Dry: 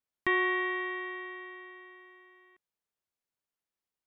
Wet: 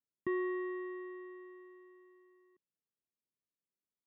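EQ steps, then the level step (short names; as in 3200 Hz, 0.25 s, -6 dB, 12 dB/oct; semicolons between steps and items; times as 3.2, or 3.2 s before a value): running mean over 57 samples; HPF 130 Hz; +1.5 dB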